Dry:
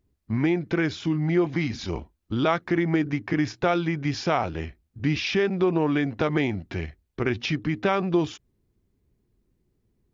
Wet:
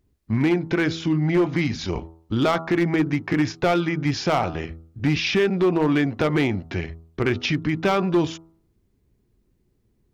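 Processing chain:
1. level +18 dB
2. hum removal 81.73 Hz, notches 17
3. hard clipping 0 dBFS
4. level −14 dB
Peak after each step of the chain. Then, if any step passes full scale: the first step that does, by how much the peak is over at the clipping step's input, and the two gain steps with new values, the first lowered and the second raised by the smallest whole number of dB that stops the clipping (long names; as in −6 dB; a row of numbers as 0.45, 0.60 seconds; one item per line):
+8.0, +7.5, 0.0, −14.0 dBFS
step 1, 7.5 dB
step 1 +10 dB, step 4 −6 dB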